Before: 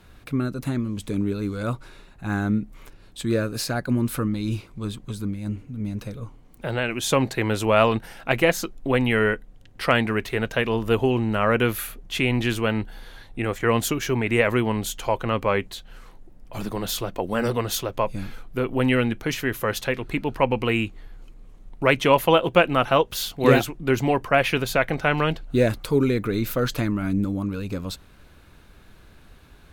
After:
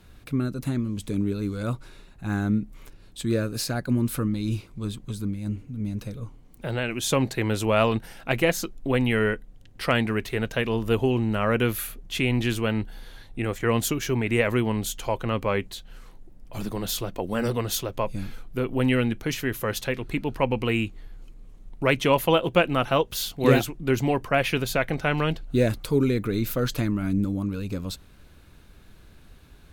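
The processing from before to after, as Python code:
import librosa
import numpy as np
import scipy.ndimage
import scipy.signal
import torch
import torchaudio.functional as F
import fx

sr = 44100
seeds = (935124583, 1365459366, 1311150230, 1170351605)

y = fx.peak_eq(x, sr, hz=1100.0, db=-4.5, octaves=2.9)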